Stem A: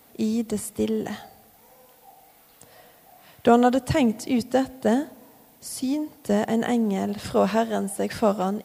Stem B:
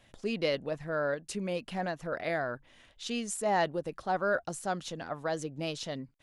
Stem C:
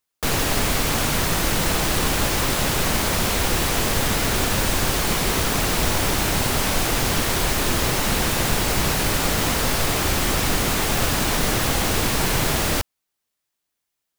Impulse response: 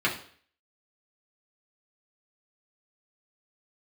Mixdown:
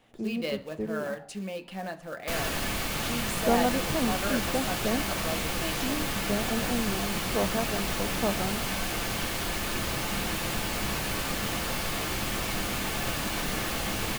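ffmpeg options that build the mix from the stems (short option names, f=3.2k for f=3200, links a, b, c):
-filter_complex "[0:a]lowpass=f=1.8k:w=0.5412,lowpass=f=1.8k:w=1.3066,volume=-8.5dB[a];[1:a]acrusher=bits=4:mode=log:mix=0:aa=0.000001,volume=-4.5dB,asplit=2[b][c];[c]volume=-16.5dB[d];[2:a]adelay=2050,volume=-11.5dB,asplit=2[e][f];[f]volume=-14dB[g];[3:a]atrim=start_sample=2205[h];[d][g]amix=inputs=2:normalize=0[i];[i][h]afir=irnorm=-1:irlink=0[j];[a][b][e][j]amix=inputs=4:normalize=0"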